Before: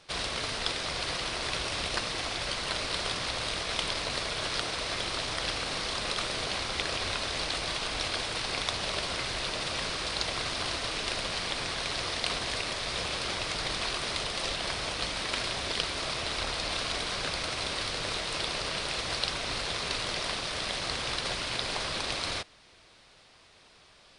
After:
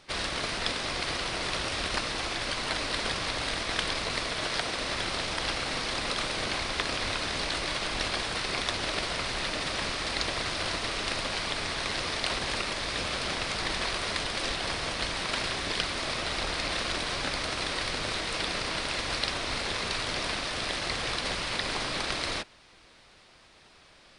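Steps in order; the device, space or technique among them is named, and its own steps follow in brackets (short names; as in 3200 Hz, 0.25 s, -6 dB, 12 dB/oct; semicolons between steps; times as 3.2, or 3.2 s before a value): 4.27–4.8 low shelf 100 Hz -4.5 dB; octave pedal (harmoniser -12 st -4 dB)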